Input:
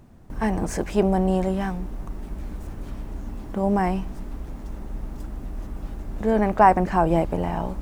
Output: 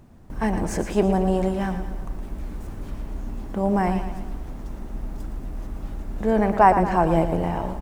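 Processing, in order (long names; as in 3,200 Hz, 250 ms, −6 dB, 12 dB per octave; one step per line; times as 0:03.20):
repeating echo 114 ms, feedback 53%, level −10 dB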